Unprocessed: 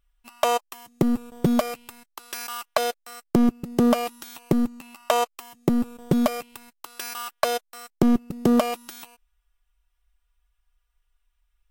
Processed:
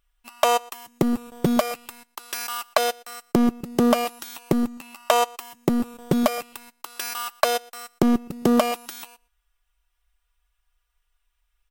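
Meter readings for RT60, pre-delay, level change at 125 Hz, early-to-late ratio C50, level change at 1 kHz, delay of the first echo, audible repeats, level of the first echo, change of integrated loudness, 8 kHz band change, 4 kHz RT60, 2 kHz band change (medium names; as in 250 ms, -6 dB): no reverb, no reverb, -1.5 dB, no reverb, +2.5 dB, 118 ms, 1, -23.5 dB, +1.0 dB, +3.5 dB, no reverb, +3.5 dB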